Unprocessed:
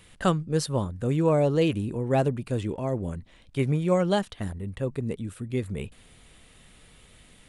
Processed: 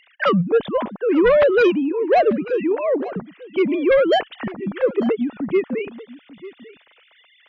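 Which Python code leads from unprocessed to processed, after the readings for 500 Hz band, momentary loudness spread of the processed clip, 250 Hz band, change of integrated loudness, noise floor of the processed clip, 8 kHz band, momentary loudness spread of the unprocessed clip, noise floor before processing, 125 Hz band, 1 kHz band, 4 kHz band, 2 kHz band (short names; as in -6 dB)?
+10.0 dB, 13 LU, +6.5 dB, +8.0 dB, -56 dBFS, under -15 dB, 12 LU, -55 dBFS, -6.0 dB, +9.0 dB, +6.0 dB, +13.0 dB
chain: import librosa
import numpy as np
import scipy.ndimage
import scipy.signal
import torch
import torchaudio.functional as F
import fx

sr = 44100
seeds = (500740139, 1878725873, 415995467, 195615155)

y = fx.sine_speech(x, sr)
y = fx.cheby_harmonics(y, sr, harmonics=(5,), levels_db=(-7,), full_scale_db=-8.5)
y = y + 10.0 ** (-18.0 / 20.0) * np.pad(y, (int(893 * sr / 1000.0), 0))[:len(y)]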